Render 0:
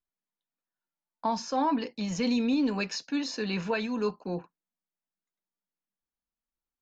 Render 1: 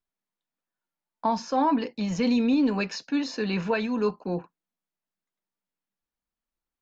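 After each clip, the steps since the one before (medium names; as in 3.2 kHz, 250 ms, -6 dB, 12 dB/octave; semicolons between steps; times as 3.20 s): treble shelf 4.3 kHz -8.5 dB; trim +4 dB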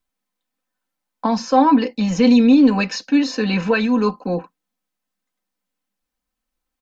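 comb 3.9 ms, depth 60%; trim +7 dB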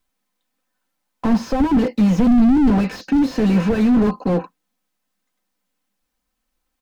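slew-rate limiter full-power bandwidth 35 Hz; trim +5.5 dB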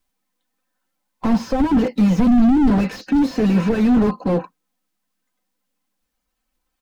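coarse spectral quantiser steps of 15 dB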